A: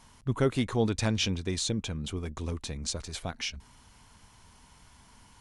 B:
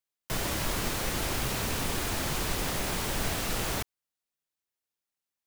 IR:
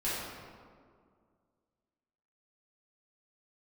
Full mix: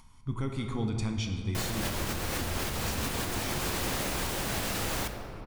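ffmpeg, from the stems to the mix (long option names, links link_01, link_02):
-filter_complex "[0:a]lowshelf=frequency=95:gain=8,aecho=1:1:0.9:0.54,volume=-10.5dB,asplit=3[link_01][link_02][link_03];[link_02]volume=-8dB[link_04];[1:a]adelay=1250,volume=2.5dB,asplit=2[link_05][link_06];[link_06]volume=-12dB[link_07];[link_03]apad=whole_len=296085[link_08];[link_05][link_08]sidechaincompress=threshold=-42dB:ratio=8:attack=8.8:release=121[link_09];[2:a]atrim=start_sample=2205[link_10];[link_04][link_07]amix=inputs=2:normalize=0[link_11];[link_11][link_10]afir=irnorm=-1:irlink=0[link_12];[link_01][link_09][link_12]amix=inputs=3:normalize=0,afftfilt=real='re*lt(hypot(re,im),0.562)':imag='im*lt(hypot(re,im),0.562)':win_size=1024:overlap=0.75,acompressor=mode=upward:threshold=-54dB:ratio=2.5,alimiter=limit=-21dB:level=0:latency=1:release=341"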